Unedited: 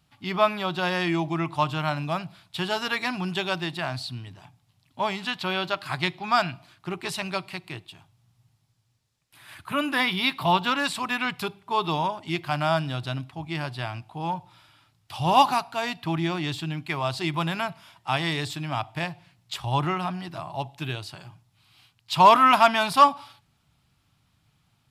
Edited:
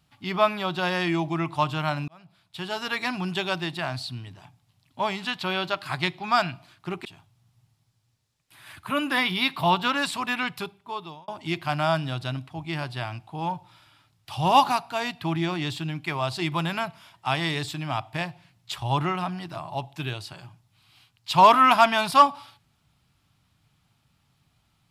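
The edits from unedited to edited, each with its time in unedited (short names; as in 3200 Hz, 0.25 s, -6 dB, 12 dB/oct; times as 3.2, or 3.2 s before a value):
2.08–3.08 fade in
7.05–7.87 cut
11.19–12.1 fade out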